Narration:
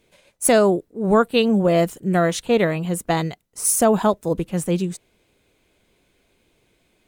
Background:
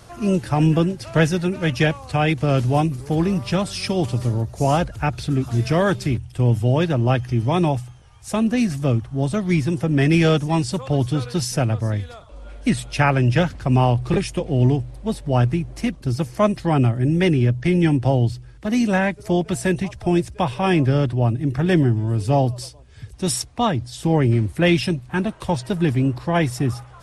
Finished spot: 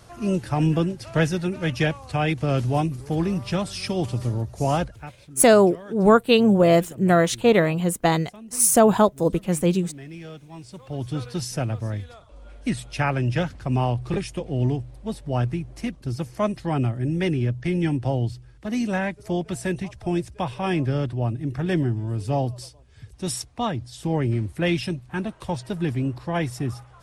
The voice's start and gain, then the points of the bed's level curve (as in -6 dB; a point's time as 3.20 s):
4.95 s, +1.0 dB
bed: 4.83 s -4 dB
5.17 s -23 dB
10.48 s -23 dB
11.17 s -6 dB